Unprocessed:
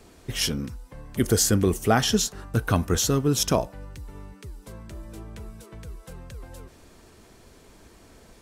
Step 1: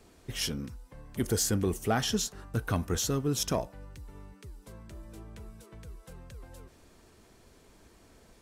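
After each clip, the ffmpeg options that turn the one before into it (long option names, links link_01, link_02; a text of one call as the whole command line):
ffmpeg -i in.wav -af "asoftclip=type=tanh:threshold=-10.5dB,volume=-6.5dB" out.wav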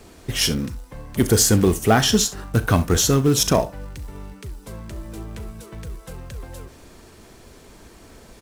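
ffmpeg -i in.wav -filter_complex "[0:a]asplit=2[link_01][link_02];[link_02]acrusher=bits=3:mode=log:mix=0:aa=0.000001,volume=-5dB[link_03];[link_01][link_03]amix=inputs=2:normalize=0,aecho=1:1:37|67:0.158|0.133,volume=8dB" out.wav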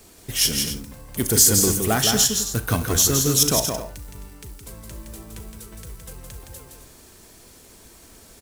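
ffmpeg -i in.wav -af "aecho=1:1:166.2|262.4:0.562|0.251,crystalizer=i=2.5:c=0,volume=-6.5dB" out.wav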